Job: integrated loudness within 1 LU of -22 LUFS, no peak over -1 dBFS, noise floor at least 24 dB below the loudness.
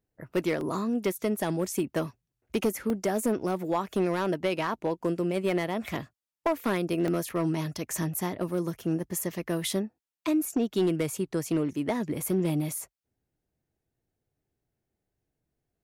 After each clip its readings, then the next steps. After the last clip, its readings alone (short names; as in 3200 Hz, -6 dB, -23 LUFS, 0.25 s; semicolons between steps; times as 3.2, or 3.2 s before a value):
clipped 0.6%; flat tops at -19.0 dBFS; dropouts 4; longest dropout 1.4 ms; loudness -29.5 LUFS; peak -19.0 dBFS; loudness target -22.0 LUFS
-> clip repair -19 dBFS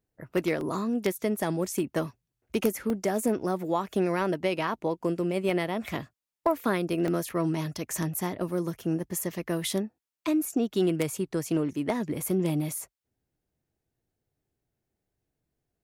clipped 0.0%; dropouts 4; longest dropout 1.4 ms
-> interpolate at 0.61/2.9/7.08/12.79, 1.4 ms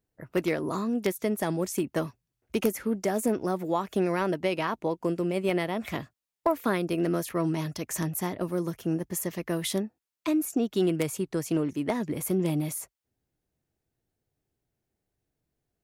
dropouts 0; loudness -29.5 LUFS; peak -10.0 dBFS; loudness target -22.0 LUFS
-> gain +7.5 dB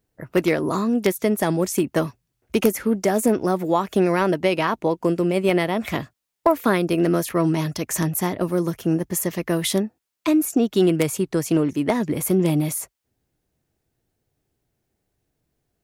loudness -22.0 LUFS; peak -2.5 dBFS; noise floor -77 dBFS